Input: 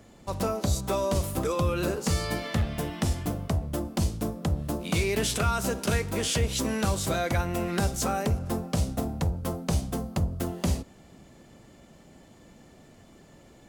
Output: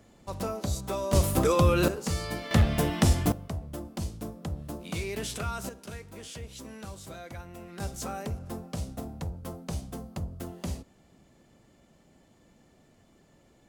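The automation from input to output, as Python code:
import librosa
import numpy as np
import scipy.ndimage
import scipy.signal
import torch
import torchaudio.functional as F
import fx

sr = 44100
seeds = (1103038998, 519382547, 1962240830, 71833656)

y = fx.gain(x, sr, db=fx.steps((0.0, -4.5), (1.13, 4.5), (1.88, -4.0), (2.51, 5.0), (3.32, -7.5), (5.69, -15.5), (7.8, -8.0)))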